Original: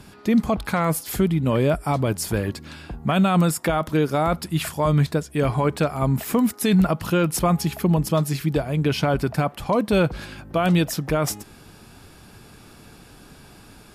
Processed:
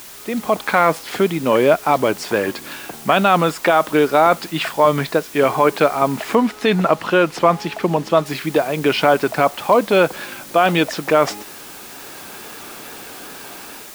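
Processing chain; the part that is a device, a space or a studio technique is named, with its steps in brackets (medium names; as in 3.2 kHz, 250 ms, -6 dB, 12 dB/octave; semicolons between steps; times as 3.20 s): dictaphone (band-pass 380–3600 Hz; level rider gain up to 14 dB; wow and flutter; white noise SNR 20 dB); 6.35–8.26 s: treble shelf 7.3 kHz -10 dB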